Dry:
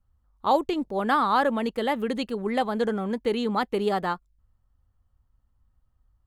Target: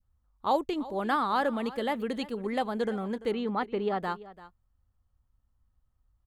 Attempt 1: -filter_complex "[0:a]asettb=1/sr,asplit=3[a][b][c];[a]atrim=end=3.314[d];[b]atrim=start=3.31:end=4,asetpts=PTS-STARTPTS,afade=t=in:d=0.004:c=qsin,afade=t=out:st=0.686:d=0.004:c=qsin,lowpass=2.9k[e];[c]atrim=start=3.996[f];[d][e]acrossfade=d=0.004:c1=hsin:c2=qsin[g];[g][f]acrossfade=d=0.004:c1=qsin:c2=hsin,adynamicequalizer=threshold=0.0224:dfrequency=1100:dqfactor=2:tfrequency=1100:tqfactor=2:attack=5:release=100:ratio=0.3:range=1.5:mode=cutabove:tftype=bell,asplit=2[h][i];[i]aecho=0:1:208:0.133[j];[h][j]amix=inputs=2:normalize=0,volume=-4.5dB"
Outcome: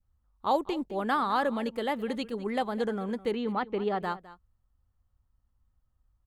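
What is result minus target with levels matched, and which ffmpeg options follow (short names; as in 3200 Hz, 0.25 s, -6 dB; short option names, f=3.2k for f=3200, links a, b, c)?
echo 0.132 s early
-filter_complex "[0:a]asettb=1/sr,asplit=3[a][b][c];[a]atrim=end=3.314[d];[b]atrim=start=3.31:end=4,asetpts=PTS-STARTPTS,afade=t=in:d=0.004:c=qsin,afade=t=out:st=0.686:d=0.004:c=qsin,lowpass=2.9k[e];[c]atrim=start=3.996[f];[d][e]acrossfade=d=0.004:c1=hsin:c2=qsin[g];[g][f]acrossfade=d=0.004:c1=qsin:c2=hsin,adynamicequalizer=threshold=0.0224:dfrequency=1100:dqfactor=2:tfrequency=1100:tqfactor=2:attack=5:release=100:ratio=0.3:range=1.5:mode=cutabove:tftype=bell,asplit=2[h][i];[i]aecho=0:1:340:0.133[j];[h][j]amix=inputs=2:normalize=0,volume=-4.5dB"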